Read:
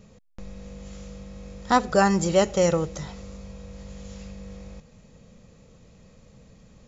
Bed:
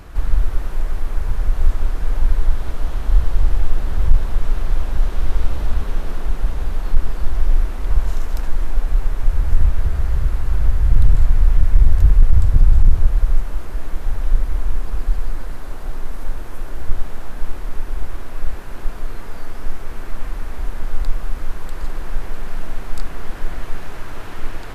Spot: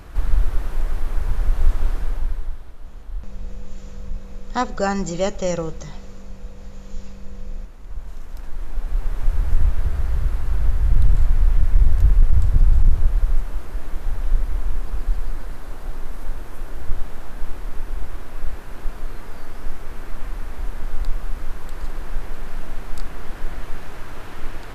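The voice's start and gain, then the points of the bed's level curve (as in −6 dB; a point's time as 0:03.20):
2.85 s, −2.5 dB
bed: 0:01.94 −1.5 dB
0:02.72 −16.5 dB
0:07.86 −16.5 dB
0:09.22 −3 dB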